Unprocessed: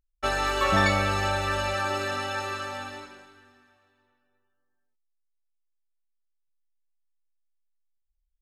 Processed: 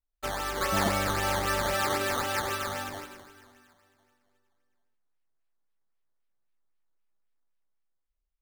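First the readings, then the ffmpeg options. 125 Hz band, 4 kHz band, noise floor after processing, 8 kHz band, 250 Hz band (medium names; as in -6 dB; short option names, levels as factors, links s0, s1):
-5.0 dB, -2.0 dB, -80 dBFS, +4.0 dB, -2.0 dB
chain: -af "adynamicequalizer=threshold=0.00708:dfrequency=100:dqfactor=2.4:tfrequency=100:tqfactor=2.4:attack=5:release=100:ratio=0.375:range=2.5:mode=cutabove:tftype=bell,dynaudnorm=f=240:g=9:m=2.37,acrusher=samples=12:mix=1:aa=0.000001:lfo=1:lforange=12:lforate=3.8,volume=0.473"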